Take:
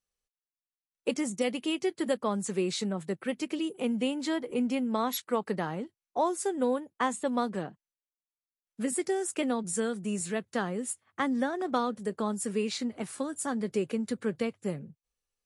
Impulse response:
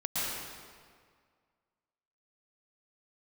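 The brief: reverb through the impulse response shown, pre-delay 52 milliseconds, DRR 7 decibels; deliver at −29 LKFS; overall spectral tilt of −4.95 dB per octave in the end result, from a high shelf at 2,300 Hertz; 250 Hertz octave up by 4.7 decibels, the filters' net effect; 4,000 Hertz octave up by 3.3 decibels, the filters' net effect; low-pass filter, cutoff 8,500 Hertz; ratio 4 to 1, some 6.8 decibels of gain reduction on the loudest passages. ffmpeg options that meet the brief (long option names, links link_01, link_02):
-filter_complex "[0:a]lowpass=8500,equalizer=frequency=250:width_type=o:gain=5.5,highshelf=frequency=2300:gain=-4,equalizer=frequency=4000:width_type=o:gain=8,acompressor=threshold=-29dB:ratio=4,asplit=2[link_01][link_02];[1:a]atrim=start_sample=2205,adelay=52[link_03];[link_02][link_03]afir=irnorm=-1:irlink=0,volume=-14.5dB[link_04];[link_01][link_04]amix=inputs=2:normalize=0,volume=4dB"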